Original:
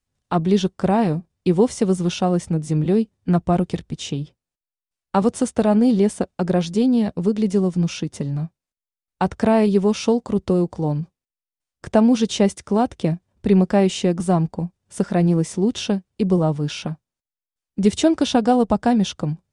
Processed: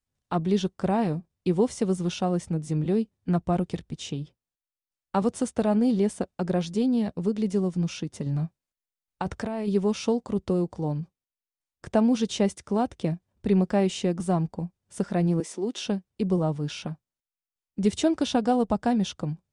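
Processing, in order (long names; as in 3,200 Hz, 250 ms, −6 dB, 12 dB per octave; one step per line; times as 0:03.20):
0:08.26–0:09.68: compressor whose output falls as the input rises −21 dBFS, ratio −1
0:15.40–0:15.86: high-pass filter 260 Hz 24 dB per octave
level −6.5 dB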